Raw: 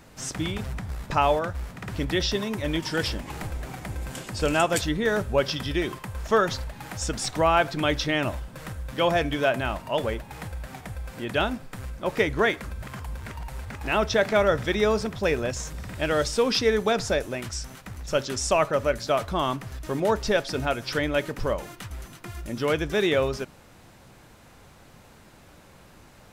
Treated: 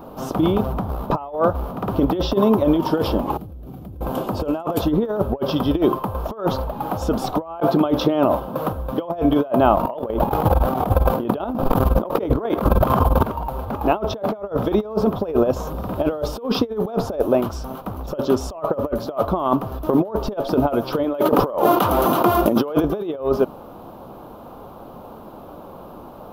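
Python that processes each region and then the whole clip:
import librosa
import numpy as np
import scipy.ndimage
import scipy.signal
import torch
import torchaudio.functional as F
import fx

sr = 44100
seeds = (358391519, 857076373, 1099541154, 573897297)

y = fx.chain(x, sr, fx.highpass(hz=69.0, slope=12),
    fx.tone_stack(knobs='10-0-1'),
    fx.env_flatten(amount_pct=70), at=(3.37, 4.01))
y = fx.chain(y, sr, fx.highpass(hz=110.0, slope=12),
    fx.over_compress(threshold_db=-28.0, ratio=-0.5), at=(7.6, 8.69))
y = fx.chain(y, sr, fx.tremolo(hz=20.0, depth=0.95),
    fx.env_flatten(amount_pct=100), at=(9.77, 13.23))
y = fx.chain(y, sr, fx.highpass(hz=180.0, slope=6),
    fx.low_shelf(hz=230.0, db=-5.5),
    fx.env_flatten(amount_pct=70), at=(21.04, 22.83))
y = fx.curve_eq(y, sr, hz=(130.0, 230.0, 680.0, 1200.0, 1900.0, 3100.0, 8300.0, 13000.0), db=(0, 9, 12, 9, -16, -4, -19, 5))
y = fx.over_compress(y, sr, threshold_db=-19.0, ratio=-0.5)
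y = y * 10.0 ** (1.0 / 20.0)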